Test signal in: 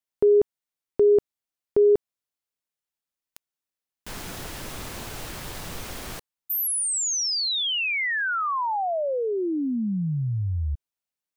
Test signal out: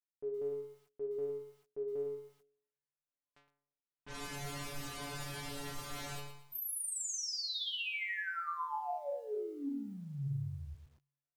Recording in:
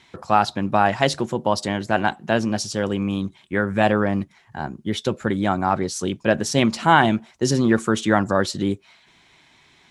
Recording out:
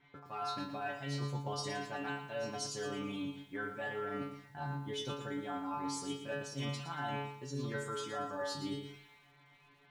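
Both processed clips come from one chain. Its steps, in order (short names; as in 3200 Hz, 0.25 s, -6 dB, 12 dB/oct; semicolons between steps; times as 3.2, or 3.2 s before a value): high shelf 9300 Hz -4.5 dB; metallic resonator 140 Hz, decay 0.63 s, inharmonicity 0.002; reverse; compressor 16:1, threshold -44 dBFS; reverse; low-pass opened by the level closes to 1800 Hz, open at -46.5 dBFS; lo-fi delay 0.115 s, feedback 35%, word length 12-bit, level -9 dB; gain +8 dB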